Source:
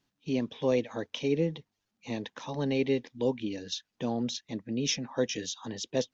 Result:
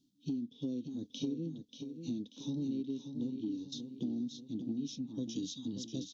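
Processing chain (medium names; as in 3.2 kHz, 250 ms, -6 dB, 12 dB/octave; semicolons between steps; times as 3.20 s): 3.21–3.77 s: gate -40 dBFS, range -15 dB; harmonic-percussive split percussive -12 dB; FFT filter 110 Hz 0 dB, 300 Hz +13 dB, 470 Hz -8 dB, 1.9 kHz -30 dB, 3.4 kHz +4 dB; compression 10:1, threshold -36 dBFS, peak gain reduction 20 dB; feedback delay 586 ms, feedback 44%, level -8 dB; trim +1 dB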